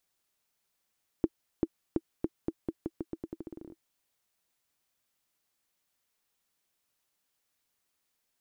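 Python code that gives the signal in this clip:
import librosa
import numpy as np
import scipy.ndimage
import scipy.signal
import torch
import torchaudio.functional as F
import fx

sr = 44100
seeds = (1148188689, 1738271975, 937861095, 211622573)

y = fx.bouncing_ball(sr, first_gap_s=0.39, ratio=0.85, hz=327.0, decay_ms=45.0, level_db=-13.5)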